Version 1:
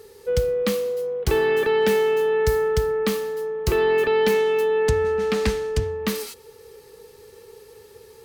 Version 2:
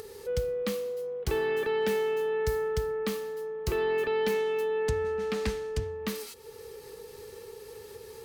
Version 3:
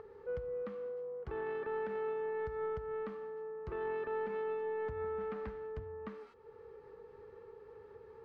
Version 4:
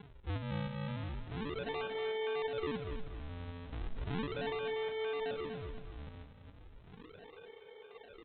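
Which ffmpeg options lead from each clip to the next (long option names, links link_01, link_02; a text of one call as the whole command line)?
ffmpeg -i in.wav -af "acompressor=mode=upward:threshold=-26dB:ratio=2.5,volume=-8.5dB" out.wav
ffmpeg -i in.wav -af "alimiter=level_in=1dB:limit=-24dB:level=0:latency=1:release=161,volume=-1dB,lowpass=frequency=1300:width_type=q:width=1.6,aeval=exprs='0.075*(cos(1*acos(clip(val(0)/0.075,-1,1)))-cos(1*PI/2))+0.0075*(cos(3*acos(clip(val(0)/0.075,-1,1)))-cos(3*PI/2))':channel_layout=same,volume=-6dB" out.wav
ffmpeg -i in.wav -af "bandpass=frequency=650:width_type=q:width=2.6:csg=0,aresample=8000,acrusher=samples=13:mix=1:aa=0.000001:lfo=1:lforange=20.8:lforate=0.36,aresample=44100,aecho=1:1:240|480|720|960:0.355|0.121|0.041|0.0139,volume=6.5dB" out.wav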